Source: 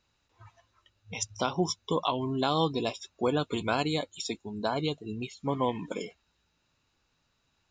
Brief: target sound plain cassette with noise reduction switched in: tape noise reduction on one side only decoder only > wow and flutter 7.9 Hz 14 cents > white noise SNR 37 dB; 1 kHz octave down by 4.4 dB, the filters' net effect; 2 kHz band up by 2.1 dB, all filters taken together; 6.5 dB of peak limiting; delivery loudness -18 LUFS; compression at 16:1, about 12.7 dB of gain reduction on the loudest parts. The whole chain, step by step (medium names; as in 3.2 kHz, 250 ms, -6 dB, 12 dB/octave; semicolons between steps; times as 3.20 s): peaking EQ 1 kHz -7 dB; peaking EQ 2 kHz +5.5 dB; compression 16:1, threshold -36 dBFS; peak limiter -30.5 dBFS; tape noise reduction on one side only decoder only; wow and flutter 7.9 Hz 14 cents; white noise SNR 37 dB; trim +24.5 dB